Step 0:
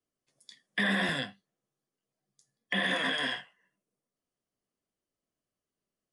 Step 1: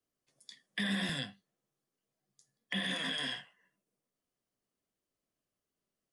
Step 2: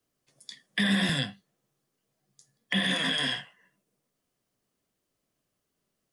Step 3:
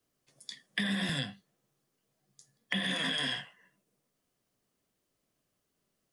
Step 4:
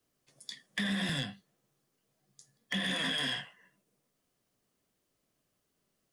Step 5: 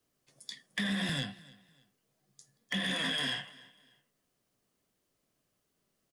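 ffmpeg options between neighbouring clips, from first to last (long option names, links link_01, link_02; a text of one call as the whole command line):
ffmpeg -i in.wav -filter_complex "[0:a]acrossover=split=220|3000[link_01][link_02][link_03];[link_02]acompressor=threshold=-43dB:ratio=3[link_04];[link_01][link_04][link_03]amix=inputs=3:normalize=0" out.wav
ffmpeg -i in.wav -af "equalizer=frequency=130:width=1.8:gain=3.5,volume=8dB" out.wav
ffmpeg -i in.wav -af "acompressor=threshold=-29dB:ratio=6" out.wav
ffmpeg -i in.wav -af "asoftclip=type=tanh:threshold=-26dB,volume=1dB" out.wav
ffmpeg -i in.wav -af "aecho=1:1:297|594:0.0794|0.0254" out.wav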